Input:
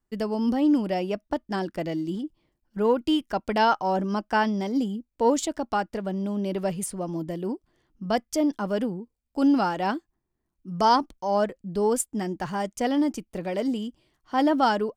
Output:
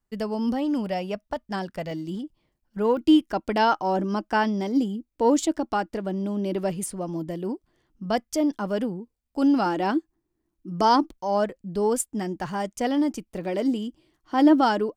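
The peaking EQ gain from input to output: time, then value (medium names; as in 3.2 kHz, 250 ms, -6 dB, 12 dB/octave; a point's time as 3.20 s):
peaking EQ 320 Hz 0.34 oct
-7.5 dB
from 0.86 s -14.5 dB
from 1.91 s -4.5 dB
from 2.97 s +7.5 dB
from 6.92 s +0.5 dB
from 9.66 s +12.5 dB
from 11.11 s +0.5 dB
from 13.44 s +9.5 dB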